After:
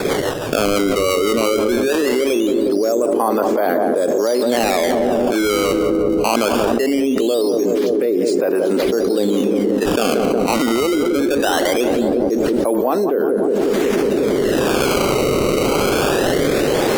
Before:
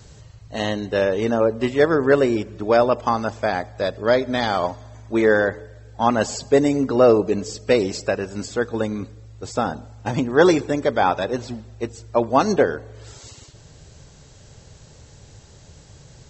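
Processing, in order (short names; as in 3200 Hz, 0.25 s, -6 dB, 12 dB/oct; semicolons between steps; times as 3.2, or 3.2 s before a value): recorder AGC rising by 5.6 dB/s; HPF 300 Hz 24 dB/oct; tilt shelf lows +6.5 dB, about 1100 Hz; in parallel at +2.5 dB: limiter -11 dBFS, peak gain reduction 11 dB; on the sum: decimation with a swept rate 14×, swing 160% 0.22 Hz; rotary speaker horn 6.3 Hz, later 1 Hz, at 1.86; on a send: darkening echo 0.174 s, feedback 77%, low-pass 810 Hz, level -9.5 dB; on the sum: speed mistake 25 fps video run at 24 fps; fast leveller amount 100%; gain -12.5 dB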